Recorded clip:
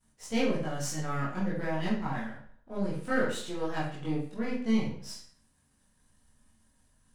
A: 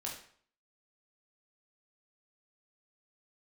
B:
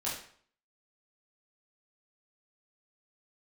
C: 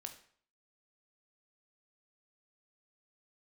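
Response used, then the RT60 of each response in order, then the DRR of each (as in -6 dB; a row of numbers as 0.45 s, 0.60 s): B; 0.55 s, 0.55 s, 0.55 s; -3.0 dB, -8.0 dB, 5.5 dB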